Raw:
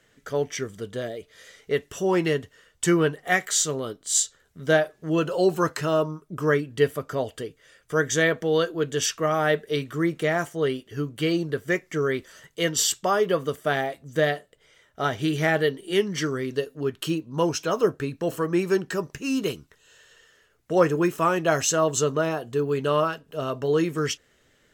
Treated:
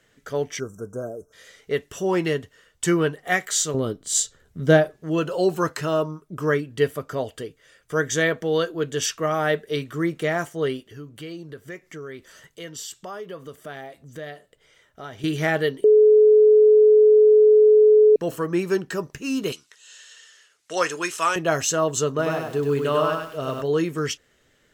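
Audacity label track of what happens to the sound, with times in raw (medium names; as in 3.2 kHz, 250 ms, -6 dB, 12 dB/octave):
0.600000	1.330000	spectral selection erased 1.6–5.2 kHz
3.740000	4.970000	bass shelf 430 Hz +11 dB
10.840000	15.240000	compression 2:1, threshold -43 dBFS
15.840000	18.160000	bleep 427 Hz -10 dBFS
19.520000	21.360000	frequency weighting ITU-R 468
22.090000	23.620000	bit-crushed delay 98 ms, feedback 35%, word length 8-bit, level -3.5 dB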